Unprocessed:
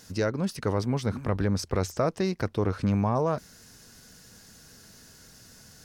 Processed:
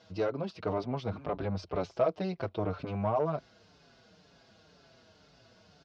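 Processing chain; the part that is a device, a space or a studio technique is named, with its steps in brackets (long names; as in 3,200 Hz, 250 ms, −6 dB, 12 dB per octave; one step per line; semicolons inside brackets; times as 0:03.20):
barber-pole flanger into a guitar amplifier (barber-pole flanger 5.7 ms −2 Hz; soft clipping −22 dBFS, distortion −16 dB; loudspeaker in its box 79–4,000 Hz, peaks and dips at 80 Hz −6 dB, 130 Hz −6 dB, 230 Hz −7 dB, 660 Hz +8 dB, 1,800 Hz −9 dB)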